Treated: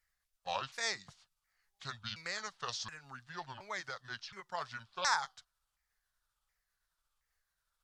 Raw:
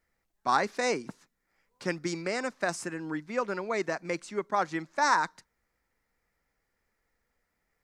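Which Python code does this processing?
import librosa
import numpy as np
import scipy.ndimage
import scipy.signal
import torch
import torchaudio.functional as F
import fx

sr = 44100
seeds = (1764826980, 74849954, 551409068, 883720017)

y = fx.pitch_ramps(x, sr, semitones=-8.5, every_ms=721)
y = fx.tone_stack(y, sr, knobs='10-0-10')
y = y * librosa.db_to_amplitude(1.5)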